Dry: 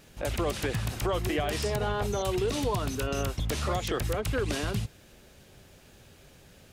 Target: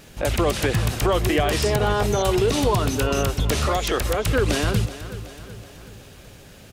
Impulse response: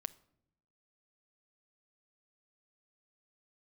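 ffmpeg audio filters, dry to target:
-filter_complex "[0:a]asettb=1/sr,asplit=3[link_01][link_02][link_03];[link_01]atrim=end=3.674[link_04];[link_02]atrim=start=3.67:end=4.25,asetpts=PTS-STARTPTS,afade=type=in:duration=0.004:curve=qsin,afade=type=out:start_time=0.576:duration=0.004:curve=qsin,equalizer=frequency=140:width_type=o:width=1.6:gain=-9[link_05];[link_03]atrim=start=4.246[link_06];[link_04][link_05]acrossfade=duration=0.004:curve1=hsin:curve2=qsin[link_07];[link_07][link_06]acrossfade=duration=0.004:curve1=qsin:curve2=hsin,aecho=1:1:376|752|1128|1504|1880:0.188|0.102|0.0549|0.0297|0.016,volume=8.5dB"

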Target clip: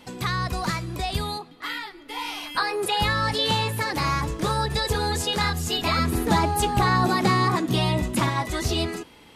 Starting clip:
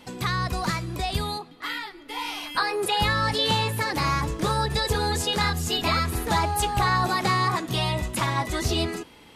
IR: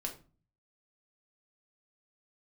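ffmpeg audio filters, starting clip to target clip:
-filter_complex "[0:a]asettb=1/sr,asplit=3[link_01][link_02][link_03];[link_01]atrim=end=5.984[link_04];[link_02]atrim=start=5.98:end=8.29,asetpts=PTS-STARTPTS,afade=type=in:duration=0.004:curve=qsin,afade=type=out:start_time=2.306:duration=0.004:curve=qsin,equalizer=frequency=250:width=0.87:gain=9[link_05];[link_03]atrim=start=8.286[link_06];[link_04][link_05]acrossfade=duration=0.004:curve1=hsin:curve2=qsin[link_07];[link_07][link_06]acrossfade=duration=0.004:curve1=qsin:curve2=hsin"

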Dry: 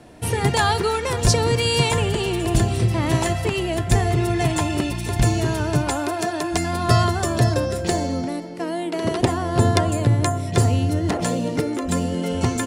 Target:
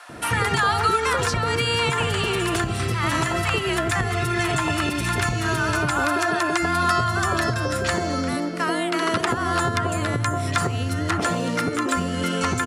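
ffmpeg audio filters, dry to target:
ffmpeg -i in.wav -filter_complex "[0:a]highpass=62,acrossover=split=800[link_01][link_02];[link_01]adelay=90[link_03];[link_03][link_02]amix=inputs=2:normalize=0,acompressor=threshold=-21dB:ratio=6,equalizer=frequency=1300:width_type=o:width=0.66:gain=11.5,acrossover=split=1200|3000[link_04][link_05][link_06];[link_04]acompressor=threshold=-31dB:ratio=4[link_07];[link_05]acompressor=threshold=-30dB:ratio=4[link_08];[link_06]acompressor=threshold=-40dB:ratio=4[link_09];[link_07][link_08][link_09]amix=inputs=3:normalize=0,aresample=32000,aresample=44100,volume=7.5dB" out.wav

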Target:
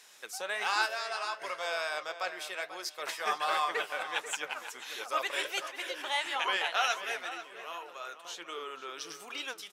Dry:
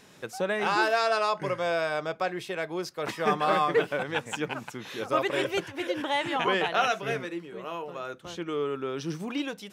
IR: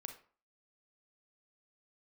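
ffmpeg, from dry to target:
-filter_complex "[0:a]highpass=760,equalizer=frequency=11000:width_type=o:width=2.7:gain=8.5,asplit=3[link_01][link_02][link_03];[link_01]afade=type=out:start_time=0.85:duration=0.02[link_04];[link_02]acompressor=threshold=-28dB:ratio=5,afade=type=in:start_time=0.85:duration=0.02,afade=type=out:start_time=1.39:duration=0.02[link_05];[link_03]afade=type=in:start_time=1.39:duration=0.02[link_06];[link_04][link_05][link_06]amix=inputs=3:normalize=0,flanger=delay=2.1:depth=9.4:regen=66:speed=1.4:shape=triangular,asplit=2[link_07][link_08];[link_08]adelay=489,lowpass=frequency=2800:poles=1,volume=-11dB,asplit=2[link_09][link_10];[link_10]adelay=489,lowpass=frequency=2800:poles=1,volume=0.24,asplit=2[link_11][link_12];[link_12]adelay=489,lowpass=frequency=2800:poles=1,volume=0.24[link_13];[link_09][link_11][link_13]amix=inputs=3:normalize=0[link_14];[link_07][link_14]amix=inputs=2:normalize=0"

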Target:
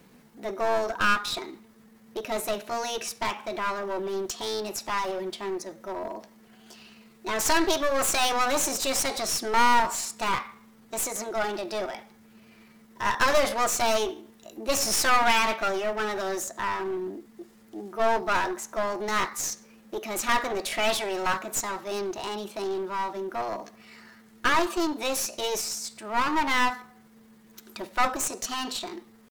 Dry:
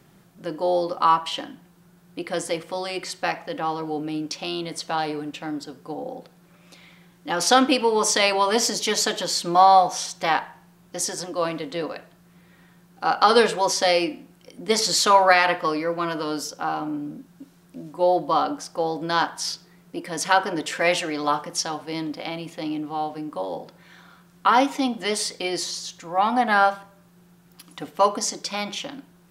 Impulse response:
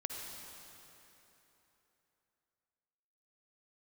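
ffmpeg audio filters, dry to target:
-af "acontrast=88,asetrate=55563,aresample=44100,atempo=0.793701,aeval=exprs='clip(val(0),-1,0.0794)':channel_layout=same,volume=-7.5dB"

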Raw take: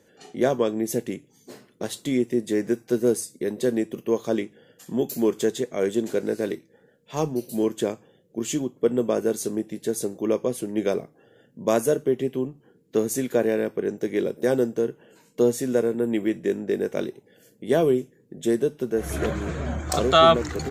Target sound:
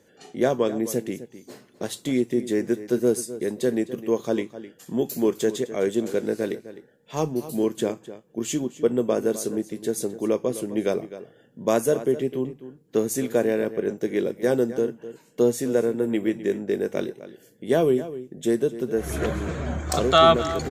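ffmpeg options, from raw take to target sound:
ffmpeg -i in.wav -filter_complex "[0:a]asplit=2[link_01][link_02];[link_02]adelay=256.6,volume=-14dB,highshelf=frequency=4000:gain=-5.77[link_03];[link_01][link_03]amix=inputs=2:normalize=0" out.wav

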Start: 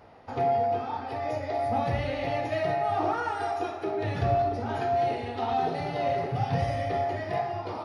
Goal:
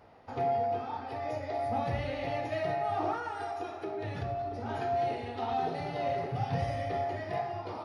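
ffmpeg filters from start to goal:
ffmpeg -i in.wav -filter_complex "[0:a]asplit=3[link_01][link_02][link_03];[link_01]afade=type=out:start_time=3.17:duration=0.02[link_04];[link_02]acompressor=threshold=-29dB:ratio=3,afade=type=in:start_time=3.17:duration=0.02,afade=type=out:start_time=4.64:duration=0.02[link_05];[link_03]afade=type=in:start_time=4.64:duration=0.02[link_06];[link_04][link_05][link_06]amix=inputs=3:normalize=0,volume=-4.5dB" out.wav

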